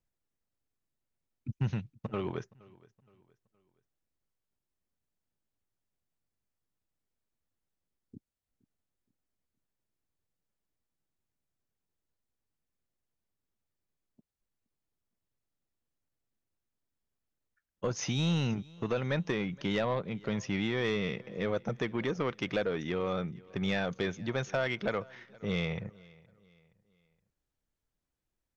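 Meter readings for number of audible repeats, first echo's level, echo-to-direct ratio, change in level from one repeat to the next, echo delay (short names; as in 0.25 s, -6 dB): 2, -24.0 dB, -23.5 dB, -8.0 dB, 0.469 s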